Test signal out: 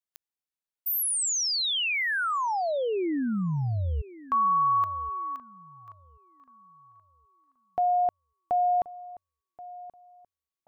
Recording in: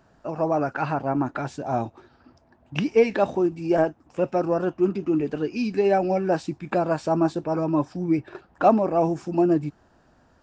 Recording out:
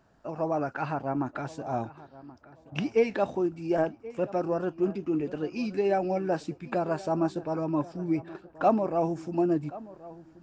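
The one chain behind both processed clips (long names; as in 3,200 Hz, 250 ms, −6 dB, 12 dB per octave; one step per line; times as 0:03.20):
feedback echo with a low-pass in the loop 1,079 ms, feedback 26%, low-pass 2,100 Hz, level −18 dB
level −5.5 dB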